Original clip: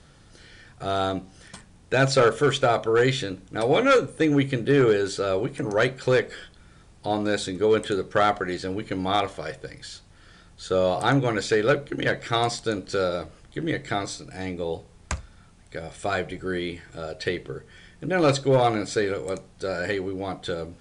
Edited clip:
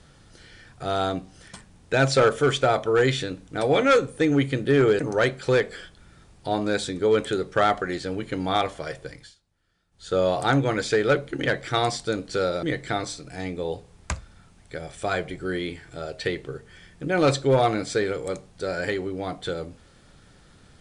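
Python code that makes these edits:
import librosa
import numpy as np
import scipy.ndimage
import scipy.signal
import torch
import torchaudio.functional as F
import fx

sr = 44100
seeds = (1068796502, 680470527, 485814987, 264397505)

y = fx.edit(x, sr, fx.cut(start_s=4.99, length_s=0.59),
    fx.fade_down_up(start_s=9.71, length_s=1.02, db=-21.0, fade_s=0.23),
    fx.cut(start_s=13.22, length_s=0.42), tone=tone)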